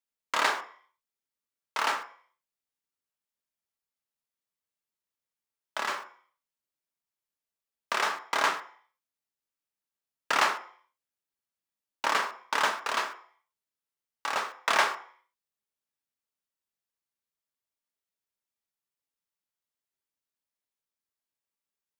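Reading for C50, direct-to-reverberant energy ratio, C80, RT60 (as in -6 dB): 11.5 dB, 5.0 dB, 16.5 dB, 0.50 s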